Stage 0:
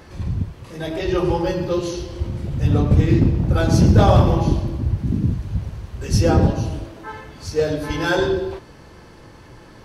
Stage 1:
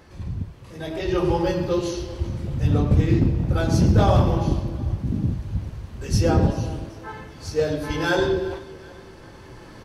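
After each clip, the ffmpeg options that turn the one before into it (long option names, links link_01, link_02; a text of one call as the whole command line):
ffmpeg -i in.wav -af "aecho=1:1:386|772|1158:0.1|0.046|0.0212,dynaudnorm=framelen=710:gausssize=3:maxgain=8.5dB,volume=-6.5dB" out.wav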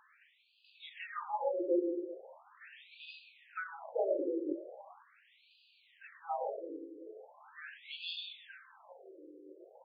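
ffmpeg -i in.wav -filter_complex "[0:a]aeval=exprs='val(0)+0.0158*(sin(2*PI*60*n/s)+sin(2*PI*2*60*n/s)/2+sin(2*PI*3*60*n/s)/3+sin(2*PI*4*60*n/s)/4+sin(2*PI*5*60*n/s)/5)':channel_layout=same,acrossover=split=340|3000[link_01][link_02][link_03];[link_02]acompressor=threshold=-20dB:ratio=6[link_04];[link_01][link_04][link_03]amix=inputs=3:normalize=0,afftfilt=real='re*between(b*sr/1024,380*pow(3500/380,0.5+0.5*sin(2*PI*0.4*pts/sr))/1.41,380*pow(3500/380,0.5+0.5*sin(2*PI*0.4*pts/sr))*1.41)':imag='im*between(b*sr/1024,380*pow(3500/380,0.5+0.5*sin(2*PI*0.4*pts/sr))/1.41,380*pow(3500/380,0.5+0.5*sin(2*PI*0.4*pts/sr))*1.41)':win_size=1024:overlap=0.75,volume=-6.5dB" out.wav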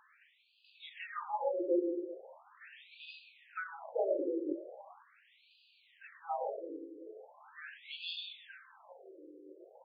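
ffmpeg -i in.wav -af anull out.wav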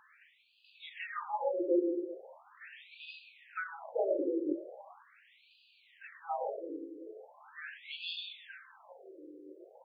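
ffmpeg -i in.wav -af "equalizer=frequency=125:width_type=o:width=1:gain=6,equalizer=frequency=250:width_type=o:width=1:gain=4,equalizer=frequency=2000:width_type=o:width=1:gain=4" out.wav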